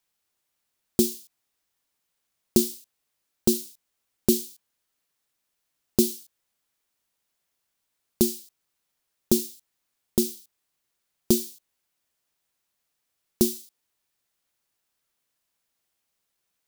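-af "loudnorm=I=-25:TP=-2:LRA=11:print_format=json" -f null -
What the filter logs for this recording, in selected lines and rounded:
"input_i" : "-25.9",
"input_tp" : "-4.5",
"input_lra" : "5.0",
"input_thresh" : "-37.4",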